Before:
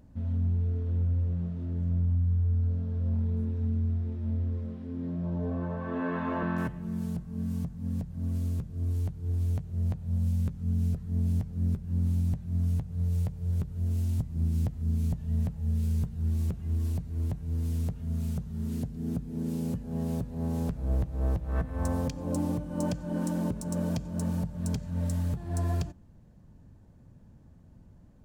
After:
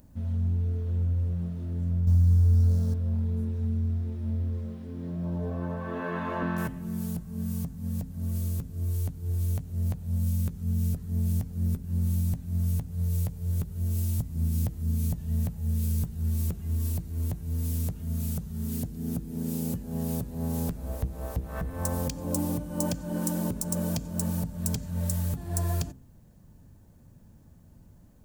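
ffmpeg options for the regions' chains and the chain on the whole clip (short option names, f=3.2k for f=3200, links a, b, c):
-filter_complex "[0:a]asettb=1/sr,asplit=3[a][b][c];[a]atrim=end=2.074[d];[b]atrim=start=2.07:end=2.94,asetpts=PTS-STARTPTS,afade=t=in:d=0.004:c=qsin,afade=t=out:st=0.866:d=0.004:c=qsin,highshelf=f=4k:t=q:w=1.5:g=10.5,acontrast=39[e];[c]atrim=start=2.936[f];[d][e]acrossfade=d=0.004:c1=hsin:c2=qsin[g];[g][f]acrossfade=d=0.004:c1=qsin:c2=hsin,aemphasis=mode=production:type=50fm,bandreject=f=65.52:t=h:w=4,bandreject=f=131.04:t=h:w=4,bandreject=f=196.56:t=h:w=4,bandreject=f=262.08:t=h:w=4,bandreject=f=327.6:t=h:w=4,bandreject=f=393.12:t=h:w=4,bandreject=f=458.64:t=h:w=4,volume=1dB"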